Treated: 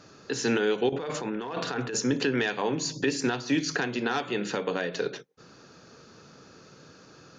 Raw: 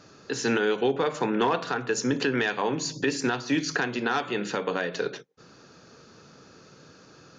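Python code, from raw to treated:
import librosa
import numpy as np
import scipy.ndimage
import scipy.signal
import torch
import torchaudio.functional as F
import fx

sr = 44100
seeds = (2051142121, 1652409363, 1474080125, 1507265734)

y = fx.over_compress(x, sr, threshold_db=-31.0, ratio=-1.0, at=(0.89, 2.0))
y = fx.dynamic_eq(y, sr, hz=1200.0, q=1.1, threshold_db=-37.0, ratio=4.0, max_db=-4)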